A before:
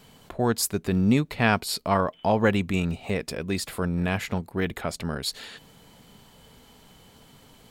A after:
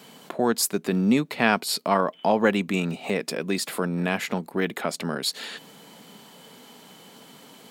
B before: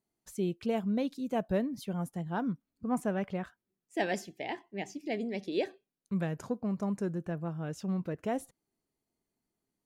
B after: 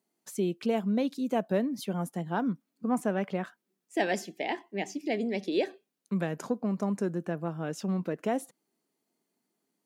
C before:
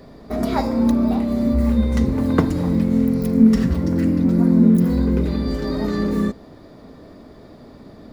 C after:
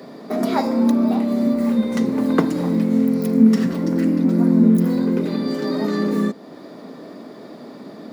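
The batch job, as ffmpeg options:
-filter_complex "[0:a]highpass=f=180:w=0.5412,highpass=f=180:w=1.3066,asplit=2[s0][s1];[s1]acompressor=threshold=0.02:ratio=6,volume=1[s2];[s0][s2]amix=inputs=2:normalize=0"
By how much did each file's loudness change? +1.0 LU, +3.0 LU, 0.0 LU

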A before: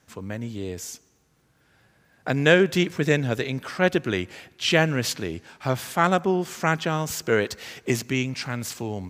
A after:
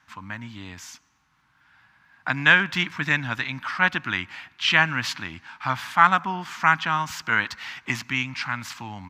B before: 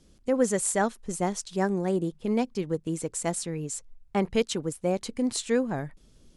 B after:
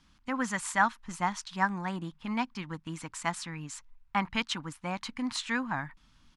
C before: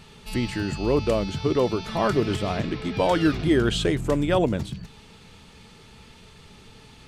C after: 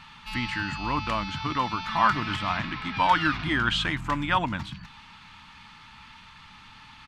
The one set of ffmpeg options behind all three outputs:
-af "firequalizer=gain_entry='entry(290,0);entry(410,-17);entry(930,14);entry(8400,-5)':delay=0.05:min_phase=1,volume=0.501"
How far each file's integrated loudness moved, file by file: +1.5 LU, -4.5 LU, -2.5 LU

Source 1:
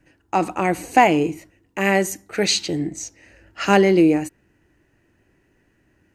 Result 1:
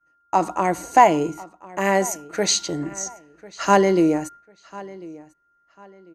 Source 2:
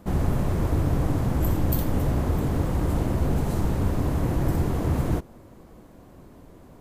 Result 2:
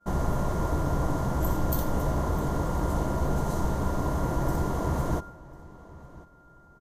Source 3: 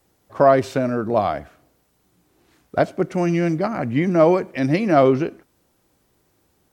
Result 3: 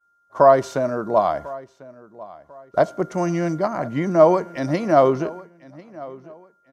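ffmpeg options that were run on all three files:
-filter_complex "[0:a]equalizer=f=100:t=o:w=0.33:g=-11,equalizer=f=250:t=o:w=0.33:g=-4,equalizer=f=630:t=o:w=0.33:g=5,equalizer=f=1000:t=o:w=0.33:g=9,equalizer=f=2500:t=o:w=0.33:g=-8,equalizer=f=6300:t=o:w=0.33:g=7,aeval=exprs='val(0)+0.00891*sin(2*PI*1400*n/s)':c=same,agate=range=0.0224:threshold=0.0224:ratio=3:detection=peak,asplit=2[s0][s1];[s1]adelay=1046,lowpass=f=4400:p=1,volume=0.1,asplit=2[s2][s3];[s3]adelay=1046,lowpass=f=4400:p=1,volume=0.3[s4];[s2][s4]amix=inputs=2:normalize=0[s5];[s0][s5]amix=inputs=2:normalize=0,aresample=32000,aresample=44100,volume=0.75"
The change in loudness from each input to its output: -1.0 LU, -3.5 LU, -0.5 LU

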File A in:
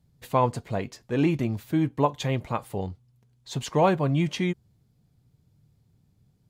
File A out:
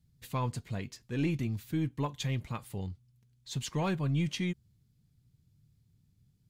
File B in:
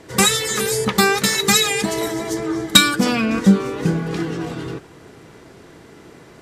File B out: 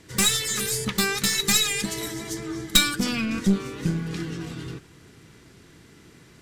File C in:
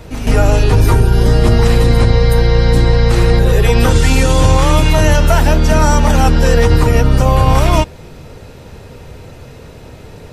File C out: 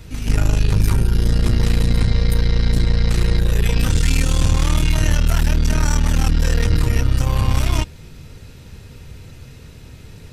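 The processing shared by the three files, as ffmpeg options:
-af "acontrast=59,equalizer=f=650:t=o:w=2.1:g=-13,aeval=exprs='1.26*(cos(1*acos(clip(val(0)/1.26,-1,1)))-cos(1*PI/2))+0.562*(cos(2*acos(clip(val(0)/1.26,-1,1)))-cos(2*PI/2))':c=same,volume=0.376"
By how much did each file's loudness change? -8.0 LU, -6.0 LU, -7.0 LU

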